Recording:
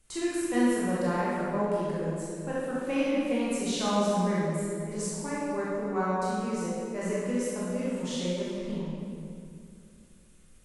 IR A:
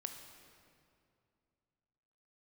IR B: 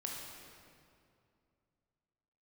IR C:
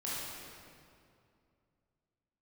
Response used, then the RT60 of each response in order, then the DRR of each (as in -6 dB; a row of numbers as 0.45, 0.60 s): C; 2.5, 2.5, 2.4 s; 5.0, -1.5, -8.5 dB